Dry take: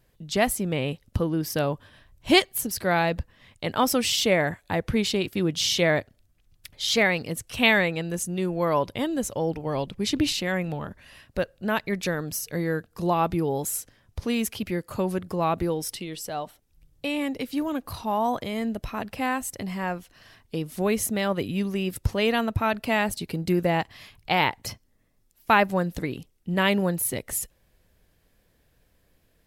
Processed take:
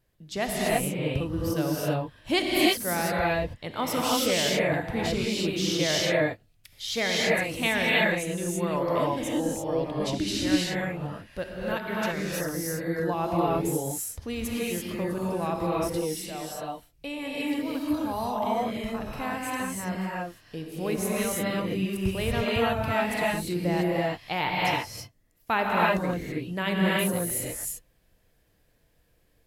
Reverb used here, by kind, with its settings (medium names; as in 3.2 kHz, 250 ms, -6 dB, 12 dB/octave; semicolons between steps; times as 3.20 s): gated-style reverb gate 360 ms rising, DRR -5 dB; trim -7.5 dB